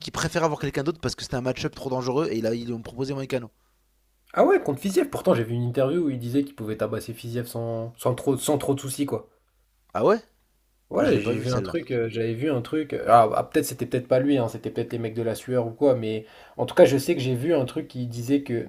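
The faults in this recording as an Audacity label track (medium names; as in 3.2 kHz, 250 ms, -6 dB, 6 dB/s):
8.390000	8.390000	dropout 4.1 ms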